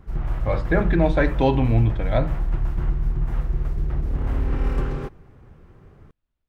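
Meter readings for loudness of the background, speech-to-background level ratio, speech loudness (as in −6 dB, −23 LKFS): −27.0 LKFS, 5.0 dB, −22.0 LKFS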